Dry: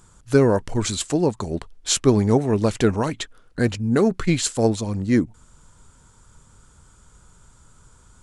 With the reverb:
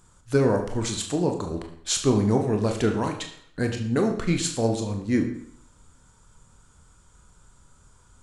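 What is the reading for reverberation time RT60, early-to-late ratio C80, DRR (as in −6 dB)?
0.65 s, 11.0 dB, 3.5 dB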